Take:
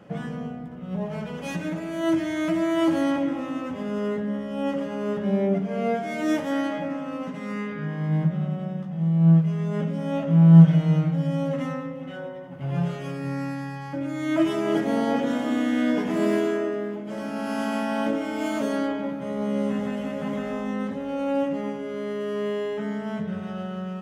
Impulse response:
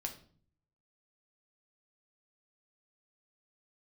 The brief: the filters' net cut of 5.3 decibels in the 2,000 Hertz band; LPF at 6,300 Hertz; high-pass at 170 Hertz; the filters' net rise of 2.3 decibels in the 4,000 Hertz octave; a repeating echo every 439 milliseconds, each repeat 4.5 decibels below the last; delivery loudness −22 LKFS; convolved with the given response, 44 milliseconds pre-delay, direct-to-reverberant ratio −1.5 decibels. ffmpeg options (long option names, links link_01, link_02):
-filter_complex "[0:a]highpass=170,lowpass=6300,equalizer=frequency=2000:width_type=o:gain=-8.5,equalizer=frequency=4000:width_type=o:gain=8,aecho=1:1:439|878|1317|1756|2195|2634|3073|3512|3951:0.596|0.357|0.214|0.129|0.0772|0.0463|0.0278|0.0167|0.01,asplit=2[link_01][link_02];[1:a]atrim=start_sample=2205,adelay=44[link_03];[link_02][link_03]afir=irnorm=-1:irlink=0,volume=2.5dB[link_04];[link_01][link_04]amix=inputs=2:normalize=0,volume=-1.5dB"